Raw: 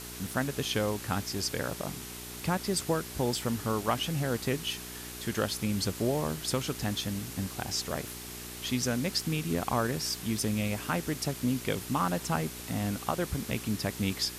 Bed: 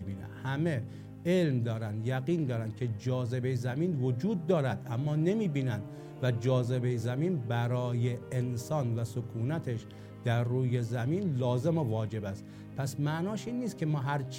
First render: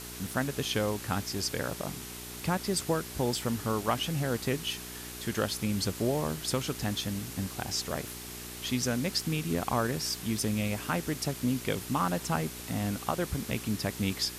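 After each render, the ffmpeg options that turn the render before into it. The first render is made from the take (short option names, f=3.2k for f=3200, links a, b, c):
-af anull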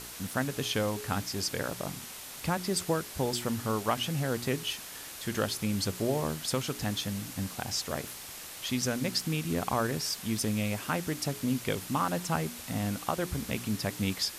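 -af "bandreject=f=60:t=h:w=4,bandreject=f=120:t=h:w=4,bandreject=f=180:t=h:w=4,bandreject=f=240:t=h:w=4,bandreject=f=300:t=h:w=4,bandreject=f=360:t=h:w=4,bandreject=f=420:t=h:w=4"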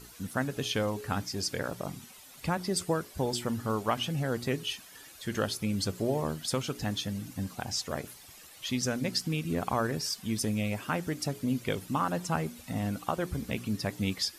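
-af "afftdn=nr=12:nf=-44"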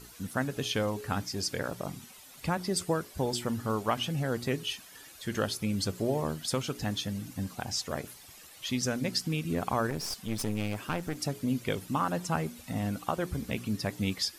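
-filter_complex "[0:a]asettb=1/sr,asplit=3[a][b][c];[a]atrim=end=9.904[d];[b]atrim=start=9.9:end=11.17,asetpts=PTS-STARTPTS,afade=t=in:d=0.004:c=qsin,afade=t=out:st=1.266:d=0.004:c=qsin,aeval=exprs='clip(val(0),-1,0.0106)':c=same[e];[c]atrim=start=11.166[f];[d][e]acrossfade=d=0.004:c1=hsin:c2=qsin[g];[g][f]acrossfade=d=0.004:c1=qsin:c2=hsin"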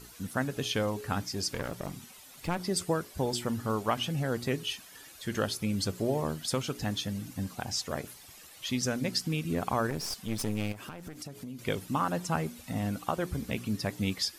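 -filter_complex "[0:a]asettb=1/sr,asplit=3[a][b][c];[a]atrim=end=1.524[d];[b]atrim=start=1.52:end=2.6,asetpts=PTS-STARTPTS,afade=t=in:d=0.004:c=qsin,afade=t=out:st=1.076:d=0.004:c=qsin,aeval=exprs='clip(val(0),-1,0.0126)':c=same[e];[c]atrim=start=2.596[f];[d][e]acrossfade=d=0.004:c1=hsin:c2=qsin[g];[g][f]acrossfade=d=0.004:c1=qsin:c2=hsin,asettb=1/sr,asplit=3[h][i][j];[h]atrim=end=10.724[k];[i]atrim=start=10.72:end=11.59,asetpts=PTS-STARTPTS,afade=t=in:d=0.004:c=qsin,afade=t=out:st=0.866:d=0.004:c=qsin,acompressor=threshold=-38dB:ratio=6:attack=3.2:release=140:knee=1:detection=peak[l];[j]atrim=start=11.586[m];[k][l]acrossfade=d=0.004:c1=hsin:c2=qsin[n];[n][m]acrossfade=d=0.004:c1=qsin:c2=hsin"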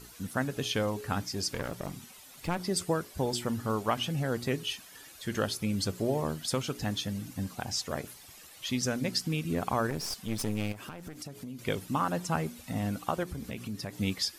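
-filter_complex "[0:a]asettb=1/sr,asplit=3[a][b][c];[a]atrim=end=13.234[d];[b]atrim=start=13.23:end=14,asetpts=PTS-STARTPTS,afade=t=in:d=0.004:c=qsin,afade=t=out:st=0.766:d=0.004:c=qsin,acompressor=threshold=-35dB:ratio=2.5:attack=3.2:release=140:knee=1:detection=peak[e];[c]atrim=start=13.996[f];[d][e]acrossfade=d=0.004:c1=hsin:c2=qsin[g];[g][f]acrossfade=d=0.004:c1=qsin:c2=hsin"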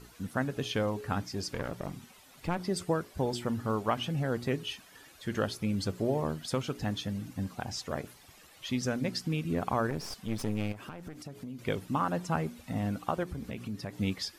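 -af "highshelf=f=3.9k:g=-9"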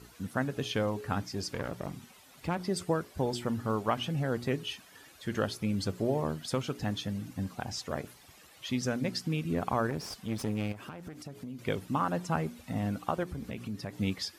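-af "highpass=47"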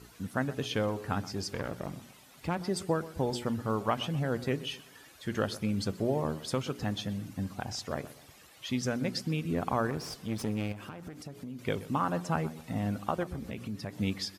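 -filter_complex "[0:a]asplit=2[a][b];[b]adelay=126,lowpass=f=2k:p=1,volume=-16dB,asplit=2[c][d];[d]adelay=126,lowpass=f=2k:p=1,volume=0.38,asplit=2[e][f];[f]adelay=126,lowpass=f=2k:p=1,volume=0.38[g];[a][c][e][g]amix=inputs=4:normalize=0"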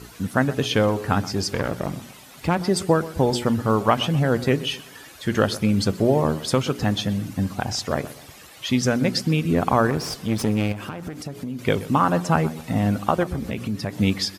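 -af "volume=11dB"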